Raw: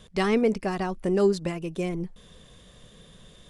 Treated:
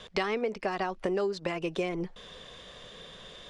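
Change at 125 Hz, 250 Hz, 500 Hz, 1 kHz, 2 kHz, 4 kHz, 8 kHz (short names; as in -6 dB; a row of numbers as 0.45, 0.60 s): -9.5, -8.5, -5.5, -1.5, -1.0, 0.0, -7.0 dB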